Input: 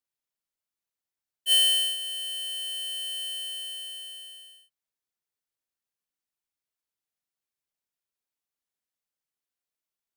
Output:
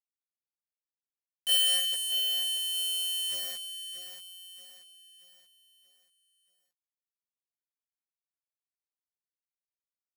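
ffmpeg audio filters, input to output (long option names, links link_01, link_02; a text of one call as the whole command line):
ffmpeg -i in.wav -filter_complex "[0:a]acrossover=split=250|3000[link_01][link_02][link_03];[link_02]acompressor=threshold=-28dB:ratio=4[link_04];[link_01][link_04][link_03]amix=inputs=3:normalize=0,asplit=2[link_05][link_06];[link_06]asoftclip=type=tanh:threshold=-32.5dB,volume=-11dB[link_07];[link_05][link_07]amix=inputs=2:normalize=0,acrusher=bits=4:mix=0:aa=0.000001,aecho=1:1:631|1262|1893|2524|3155:0.355|0.145|0.0596|0.0245|0.01,volume=-3.5dB" out.wav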